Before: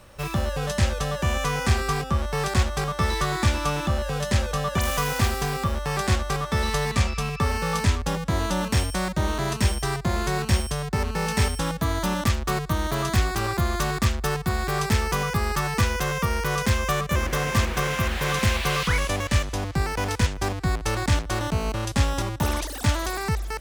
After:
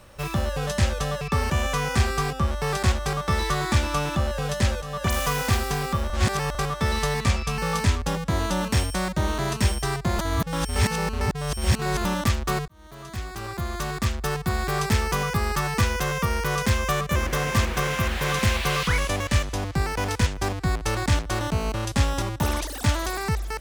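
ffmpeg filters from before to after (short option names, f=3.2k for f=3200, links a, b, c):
-filter_complex "[0:a]asplit=10[a][b][c][d][e][f][g][h][i][j];[a]atrim=end=1.212[k];[b]atrim=start=7.288:end=7.582[l];[c]atrim=start=1.208:end=4.53,asetpts=PTS-STARTPTS,afade=t=out:st=3.318:d=0.004:c=hsin:silence=0.237137[m];[d]atrim=start=4.53:end=5.812,asetpts=PTS-STARTPTS,afade=t=in:d=0.26:silence=0.237137[n];[e]atrim=start=5.808:end=6.262,asetpts=PTS-STARTPTS,areverse[o];[f]atrim=start=6.258:end=7.292[p];[g]atrim=start=7.578:end=10.192[q];[h]atrim=start=10.188:end=12.052,asetpts=PTS-STARTPTS,areverse[r];[i]atrim=start=12.048:end=12.68,asetpts=PTS-STARTPTS,afade=t=out:st=0.628:d=0.004:c=hsin[s];[j]atrim=start=12.68,asetpts=PTS-STARTPTS,afade=t=in:d=1.88[t];[k][l]acrossfade=d=0.004:c1=hsin:c2=hsin[u];[m][n]concat=n=2:v=0:a=1[v];[u][v]acrossfade=d=0.004:c1=hsin:c2=hsin[w];[w][o]acrossfade=d=0.004:c1=hsin:c2=hsin[x];[x][p]acrossfade=d=0.004:c1=hsin:c2=hsin[y];[y][q]acrossfade=d=0.004:c1=hsin:c2=hsin[z];[z][r]acrossfade=d=0.004:c1=hsin:c2=hsin[aa];[s][t]concat=n=2:v=0:a=1[ab];[aa][ab]acrossfade=d=0.004:c1=hsin:c2=hsin"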